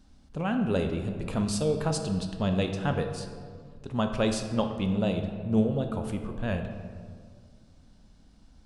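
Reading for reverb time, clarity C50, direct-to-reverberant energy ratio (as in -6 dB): 1.9 s, 6.5 dB, 5.0 dB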